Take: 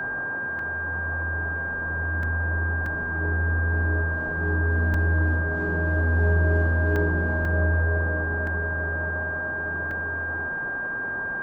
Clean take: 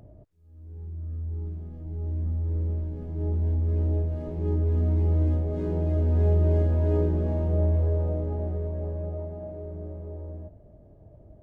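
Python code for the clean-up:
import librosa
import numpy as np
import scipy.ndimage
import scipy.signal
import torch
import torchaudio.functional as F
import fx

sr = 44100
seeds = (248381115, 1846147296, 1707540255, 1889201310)

y = fx.notch(x, sr, hz=1600.0, q=30.0)
y = fx.fix_interpolate(y, sr, at_s=(0.59, 2.23, 2.86, 4.94, 6.96, 7.45, 8.47, 9.91), length_ms=2.8)
y = fx.noise_reduce(y, sr, print_start_s=10.68, print_end_s=11.18, reduce_db=20.0)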